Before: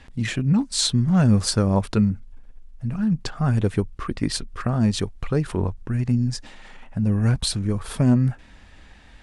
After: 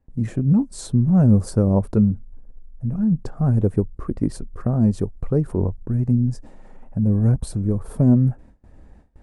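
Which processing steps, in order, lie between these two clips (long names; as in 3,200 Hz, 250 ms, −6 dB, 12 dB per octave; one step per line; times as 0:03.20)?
noise gate with hold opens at −37 dBFS
drawn EQ curve 540 Hz 0 dB, 3,300 Hz −25 dB, 10,000 Hz −10 dB
level +2.5 dB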